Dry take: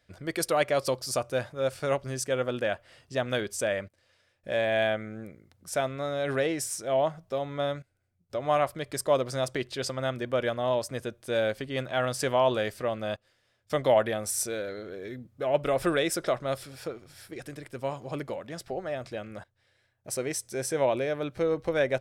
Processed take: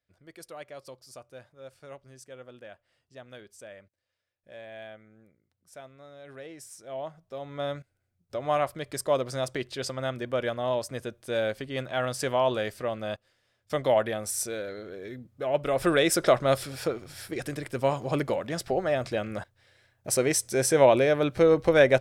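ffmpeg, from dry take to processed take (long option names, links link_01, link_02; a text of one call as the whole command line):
ffmpeg -i in.wav -af "volume=7dB,afade=type=in:start_time=6.34:duration=0.99:silence=0.354813,afade=type=in:start_time=7.33:duration=0.42:silence=0.421697,afade=type=in:start_time=15.68:duration=0.65:silence=0.398107" out.wav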